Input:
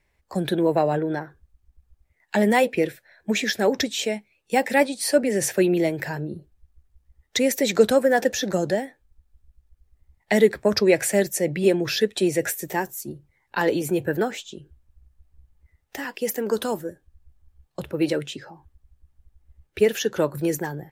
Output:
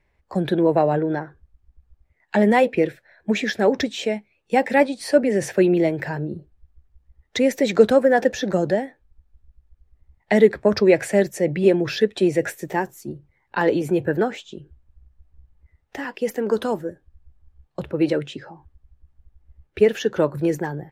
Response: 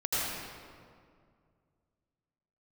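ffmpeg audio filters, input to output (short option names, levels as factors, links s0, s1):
-af "aemphasis=mode=reproduction:type=75kf,volume=1.41"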